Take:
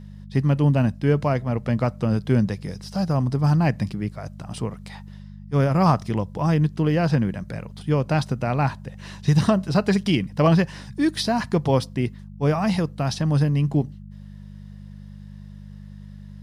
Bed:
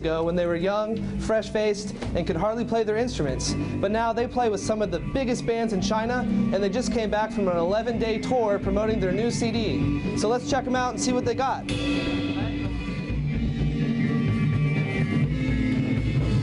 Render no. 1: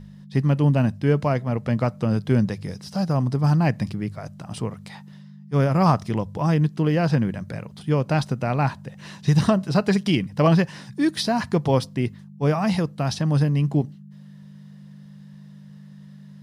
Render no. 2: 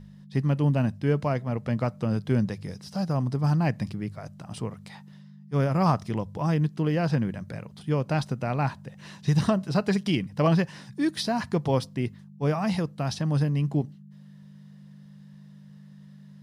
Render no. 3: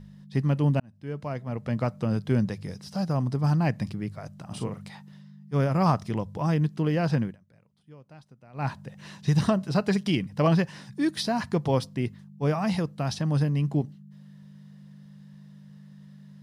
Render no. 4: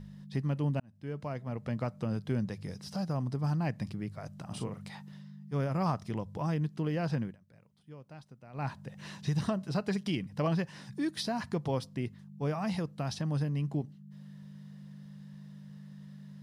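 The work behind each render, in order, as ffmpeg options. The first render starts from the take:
-af "bandreject=f=50:t=h:w=4,bandreject=f=100:t=h:w=4"
-af "volume=-4.5dB"
-filter_complex "[0:a]asettb=1/sr,asplit=3[a][b][c];[a]atrim=end=4.474[d];[b]atrim=start=4.47:end=4.9,asetpts=PTS-STARTPTS,afade=t=in:d=0.004:c=qsin,afade=t=out:st=0.426:d=0.004:c=qsin,asplit=2[e][f];[f]adelay=40,volume=-5.5dB[g];[e][g]amix=inputs=2:normalize=0,atrim=end_sample=18963[h];[c]atrim=start=4.896[i];[d][h]acrossfade=d=0.004:c1=hsin:c2=qsin[j];[j][i]acrossfade=d=0.004:c1=qsin:c2=hsin,asplit=4[k][l][m][n];[k]atrim=end=0.8,asetpts=PTS-STARTPTS,afade=t=out:st=0.796:d=0.004:c=hsin[o];[l]atrim=start=0.8:end=7.37,asetpts=PTS-STARTPTS,afade=t=in:d=1.06,afade=t=out:st=6.41:d=0.16:silence=0.0668344[p];[m]atrim=start=7.37:end=8.53,asetpts=PTS-STARTPTS,volume=-23.5dB[q];[n]atrim=start=8.53,asetpts=PTS-STARTPTS,afade=t=in:d=0.16:silence=0.0668344[r];[o][p][q][r]concat=n=4:v=0:a=1"
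-af "acompressor=threshold=-42dB:ratio=1.5"

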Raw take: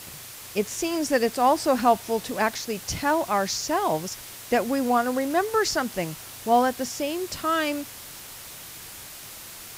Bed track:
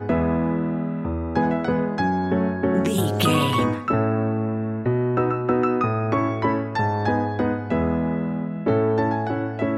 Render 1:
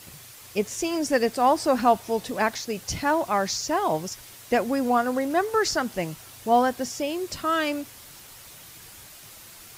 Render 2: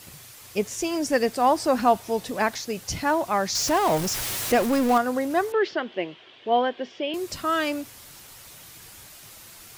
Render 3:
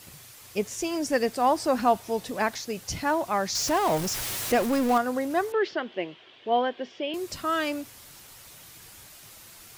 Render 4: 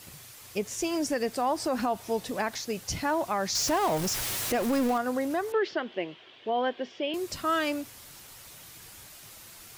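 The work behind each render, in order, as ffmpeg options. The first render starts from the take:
-af "afftdn=nr=6:nf=-42"
-filter_complex "[0:a]asettb=1/sr,asplit=3[a][b][c];[a]atrim=end=3.554[d];[b]atrim=start=3.55:end=4.98,asetpts=PTS-STARTPTS,afade=t=in:d=0.004:c=qsin,afade=t=out:st=1.426:d=0.004:c=qsin,aeval=exprs='val(0)+0.5*0.0596*sgn(val(0))':c=same[e];[c]atrim=start=4.976[f];[d][e]acrossfade=d=0.004:c1=hsin:c2=qsin[g];[g][f]acrossfade=d=0.004:c1=qsin:c2=hsin,asettb=1/sr,asplit=3[h][i][j];[h]atrim=end=5.524[k];[i]atrim=start=5.52:end=7.14,asetpts=PTS-STARTPTS,afade=t=in:d=0.004:c=qsin,afade=t=out:st=1.616:d=0.004:c=qsin,highpass=330,equalizer=f=370:t=q:w=4:g=7,equalizer=f=850:t=q:w=4:g=-5,equalizer=f=1.3k:t=q:w=4:g=-6,equalizer=f=3.2k:t=q:w=4:g=9,lowpass=f=3.3k:w=0.5412,lowpass=f=3.3k:w=1.3066[l];[j]atrim=start=7.136[m];[k][l]acrossfade=d=0.004:c1=hsin:c2=qsin[n];[n][m]acrossfade=d=0.004:c1=qsin:c2=hsin"
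-af "volume=-2.5dB"
-af "alimiter=limit=-19dB:level=0:latency=1:release=96"

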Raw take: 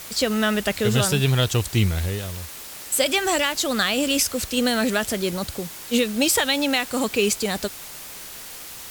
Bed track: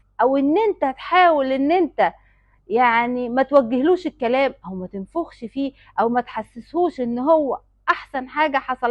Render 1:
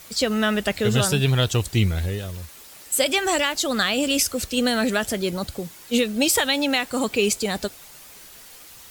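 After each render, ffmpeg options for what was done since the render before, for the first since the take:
-af "afftdn=nr=8:nf=-38"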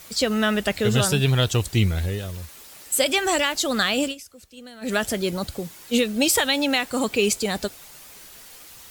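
-filter_complex "[0:a]asplit=3[a][b][c];[a]atrim=end=4.15,asetpts=PTS-STARTPTS,afade=t=out:st=4.03:d=0.12:silence=0.0891251[d];[b]atrim=start=4.15:end=4.81,asetpts=PTS-STARTPTS,volume=-21dB[e];[c]atrim=start=4.81,asetpts=PTS-STARTPTS,afade=t=in:d=0.12:silence=0.0891251[f];[d][e][f]concat=n=3:v=0:a=1"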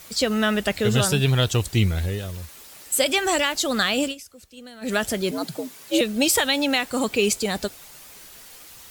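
-filter_complex "[0:a]asettb=1/sr,asplit=3[a][b][c];[a]atrim=end=5.314[d];[b]atrim=start=5.31:end=6.01,asetpts=PTS-STARTPTS,afade=t=in:d=0.004:c=qsin,afade=t=out:st=0.696:d=0.004:c=qsin,afreqshift=87[e];[c]atrim=start=6.006[f];[d][e]acrossfade=d=0.004:c1=hsin:c2=qsin[g];[g][f]acrossfade=d=0.004:c1=qsin:c2=hsin"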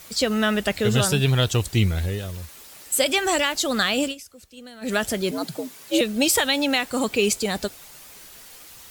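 -af anull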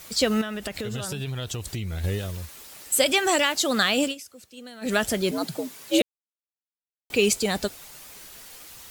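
-filter_complex "[0:a]asettb=1/sr,asplit=3[a][b][c];[a]atrim=end=0.414[d];[b]atrim=start=0.41:end=2.04,asetpts=PTS-STARTPTS,afade=t=in:d=0.004:c=qsin,afade=t=out:st=1.626:d=0.004:c=qsin,acompressor=threshold=-27dB:ratio=12:attack=3.2:release=140:knee=1:detection=peak[e];[c]atrim=start=2.036[f];[d][e]acrossfade=d=0.004:c1=hsin:c2=qsin[g];[g][f]acrossfade=d=0.004:c1=qsin:c2=hsin,asettb=1/sr,asplit=3[h][i][j];[h]atrim=end=3.124[k];[i]atrim=start=3.12:end=4.86,asetpts=PTS-STARTPTS,afade=t=in:d=0.004:c=qsin,afade=t=out:st=1.736:d=0.004:c=qsin,highpass=120[l];[j]atrim=start=4.856[m];[k][l]acrossfade=d=0.004:c1=hsin:c2=qsin[n];[n][m]acrossfade=d=0.004:c1=qsin:c2=hsin,asplit=3[o][p][q];[o]atrim=end=6.02,asetpts=PTS-STARTPTS,afade=t=out:st=6.016:d=0.004:c=hsin[r];[p]atrim=start=6.02:end=7.1,asetpts=PTS-STARTPTS,volume=0[s];[q]atrim=start=7.1,asetpts=PTS-STARTPTS,afade=t=in:d=0.004:c=hsin[t];[r][s][t]concat=n=3:v=0:a=1"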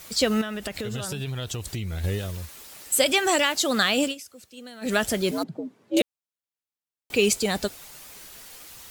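-filter_complex "[0:a]asettb=1/sr,asplit=3[a][b][c];[a]atrim=end=5.434[d];[b]atrim=start=5.43:end=5.97,asetpts=PTS-STARTPTS,afade=t=in:d=0.004:c=qsin,afade=t=out:st=0.536:d=0.004:c=qsin,bandpass=f=230:t=q:w=0.9[e];[c]atrim=start=5.966[f];[d][e]acrossfade=d=0.004:c1=hsin:c2=qsin[g];[g][f]acrossfade=d=0.004:c1=qsin:c2=hsin"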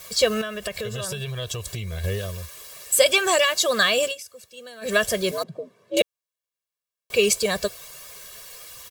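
-af "lowshelf=f=110:g=-7.5,aecho=1:1:1.8:0.91"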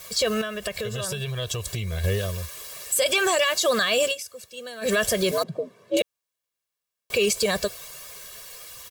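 -af "dynaudnorm=f=200:g=17:m=11.5dB,alimiter=limit=-13dB:level=0:latency=1:release=48"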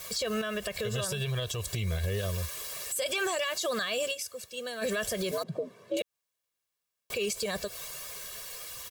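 -af "acompressor=threshold=-24dB:ratio=6,alimiter=limit=-22.5dB:level=0:latency=1:release=130"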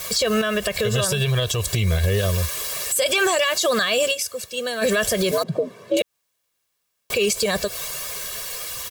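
-af "volume=11dB"

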